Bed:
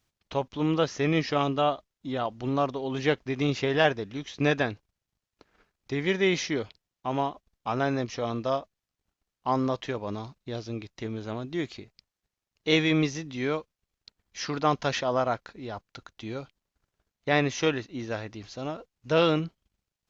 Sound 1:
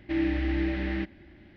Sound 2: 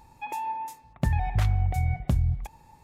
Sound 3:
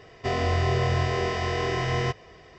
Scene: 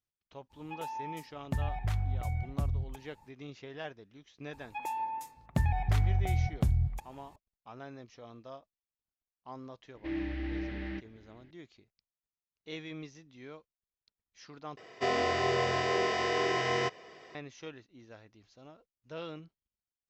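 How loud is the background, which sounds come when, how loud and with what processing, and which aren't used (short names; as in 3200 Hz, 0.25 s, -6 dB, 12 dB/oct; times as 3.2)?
bed -19.5 dB
0.49 add 2 -8 dB, fades 0.05 s
4.53 add 2 -3.5 dB
9.95 add 1 -8.5 dB
14.77 replace with 3 -1.5 dB + HPF 250 Hz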